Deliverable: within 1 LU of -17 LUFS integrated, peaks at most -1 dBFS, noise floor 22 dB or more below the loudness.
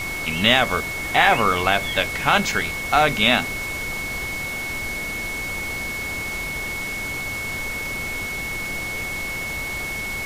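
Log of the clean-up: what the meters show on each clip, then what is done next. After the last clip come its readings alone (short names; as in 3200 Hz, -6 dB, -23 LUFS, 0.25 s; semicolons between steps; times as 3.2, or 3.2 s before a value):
steady tone 2200 Hz; tone level -27 dBFS; noise floor -29 dBFS; noise floor target -44 dBFS; loudness -22.0 LUFS; peak -1.5 dBFS; loudness target -17.0 LUFS
-> notch 2200 Hz, Q 30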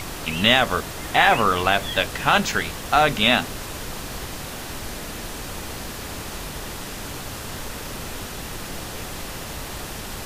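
steady tone none; noise floor -34 dBFS; noise floor target -46 dBFS
-> noise print and reduce 12 dB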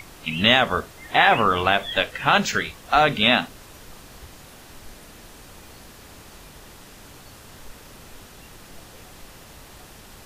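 noise floor -46 dBFS; loudness -19.5 LUFS; peak -2.5 dBFS; loudness target -17.0 LUFS
-> gain +2.5 dB; limiter -1 dBFS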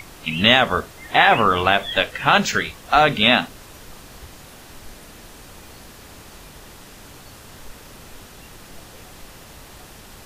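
loudness -17.0 LUFS; peak -1.0 dBFS; noise floor -43 dBFS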